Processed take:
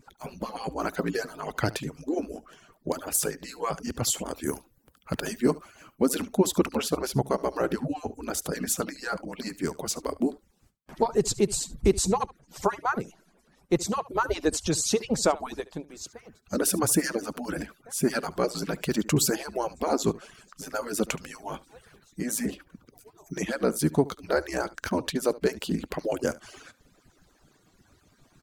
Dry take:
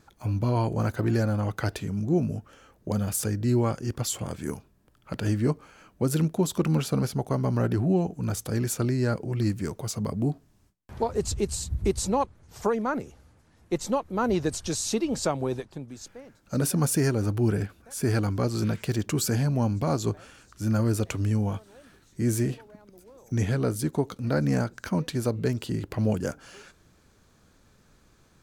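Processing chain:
harmonic-percussive split with one part muted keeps percussive
0:04.35–0:06.07: high-shelf EQ 11,000 Hz +11.5 dB
single-tap delay 72 ms −20 dB
level +4 dB

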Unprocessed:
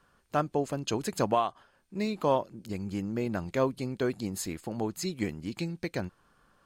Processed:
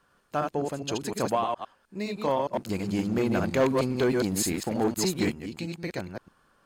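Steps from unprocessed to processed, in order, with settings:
delay that plays each chunk backwards 103 ms, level −3.5 dB
soft clipping −13 dBFS, distortion −25 dB
0:02.53–0:05.32: leveller curve on the samples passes 2
low-shelf EQ 140 Hz −5.5 dB

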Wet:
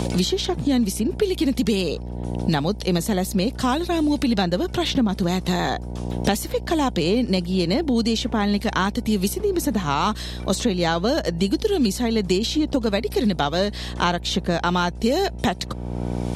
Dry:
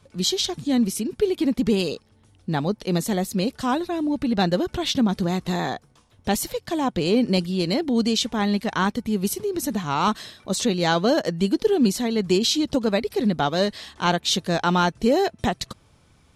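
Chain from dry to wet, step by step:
hum with harmonics 60 Hz, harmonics 16, −35 dBFS −8 dB per octave
multiband upward and downward compressor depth 100%

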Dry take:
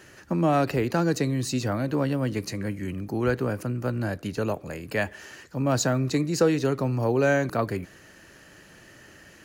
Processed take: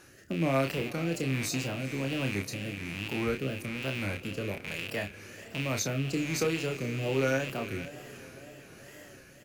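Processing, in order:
loose part that buzzes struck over −39 dBFS, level −19 dBFS
high-shelf EQ 8,900 Hz +11.5 dB
in parallel at −1 dB: downward compressor, threshold −33 dBFS, peak gain reduction 16.5 dB
on the sum: rotating-speaker cabinet horn 1.2 Hz
feedback delay with all-pass diffusion 455 ms, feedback 63%, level −16 dB
tape wow and flutter 120 cents
double-tracking delay 30 ms −6.5 dB
level −8.5 dB

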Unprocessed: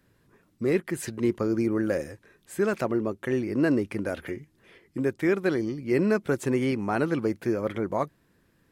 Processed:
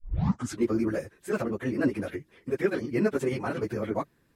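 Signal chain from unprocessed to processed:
turntable start at the beginning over 1.22 s
time stretch by phase vocoder 0.5×
level +1.5 dB

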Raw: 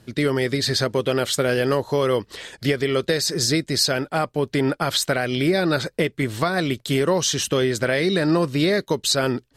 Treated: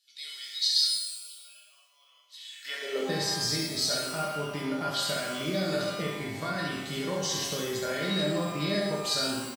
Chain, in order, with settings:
0:00.89–0:02.25: formant filter a
dynamic equaliser 4,700 Hz, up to +6 dB, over −38 dBFS, Q 2.3
tuned comb filter 200 Hz, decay 0.31 s, harmonics odd, mix 90%
far-end echo of a speakerphone 110 ms, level −7 dB
high-pass filter sweep 3,800 Hz → 65 Hz, 0:02.45–0:03.35
on a send: ambience of single reflections 27 ms −5 dB, 68 ms −3 dB
on the sum: reverb with rising layers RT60 1.2 s, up +12 semitones, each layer −8 dB, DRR 4 dB

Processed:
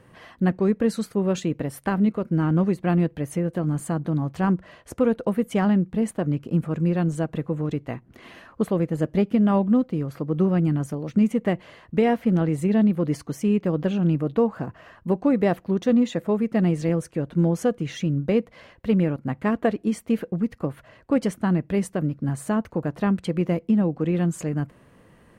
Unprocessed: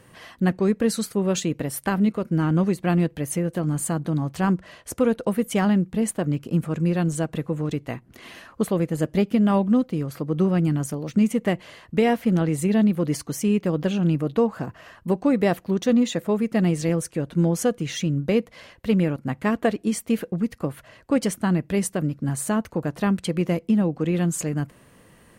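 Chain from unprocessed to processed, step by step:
high-shelf EQ 3,400 Hz −11.5 dB

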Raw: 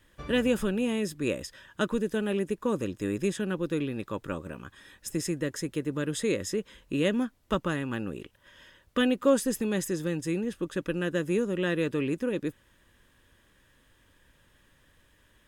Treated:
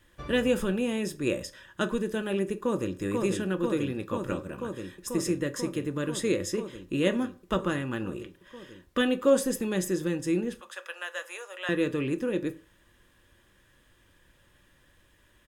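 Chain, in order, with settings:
0:02.53–0:02.98: delay throw 490 ms, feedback 85%, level −3 dB
0:10.60–0:11.69: Butterworth high-pass 640 Hz 36 dB per octave
convolution reverb RT60 0.40 s, pre-delay 3 ms, DRR 8.5 dB

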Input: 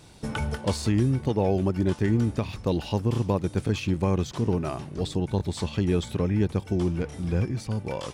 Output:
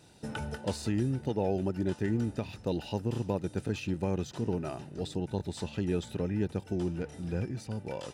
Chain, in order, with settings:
notch comb filter 1,100 Hz
level −5.5 dB

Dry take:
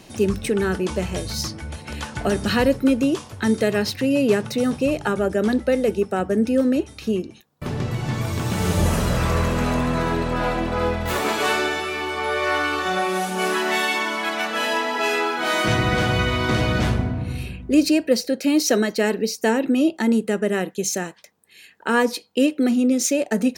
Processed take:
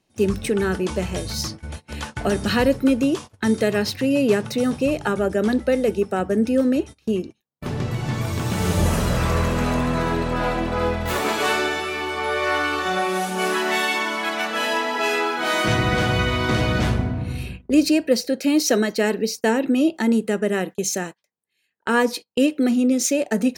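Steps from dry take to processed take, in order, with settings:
noise gate −32 dBFS, range −24 dB

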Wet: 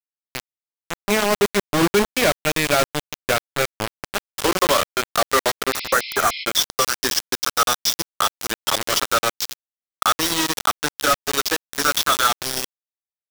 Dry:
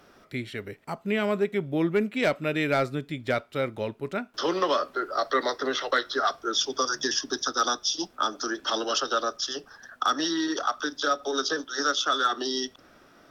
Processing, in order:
noise reduction from a noise print of the clip's start 16 dB
pitch vibrato 0.8 Hz 9.9 cents
bit reduction 4 bits
healed spectral selection 0:05.77–0:06.41, 2,000–5,500 Hz
level +5.5 dB

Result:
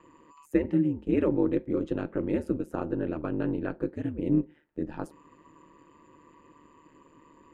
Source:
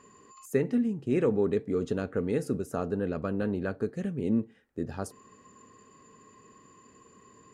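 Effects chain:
high shelf with overshoot 3,900 Hz −8.5 dB, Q 1.5
ring modulation 75 Hz
hollow resonant body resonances 300/900 Hz, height 8 dB, ringing for 35 ms

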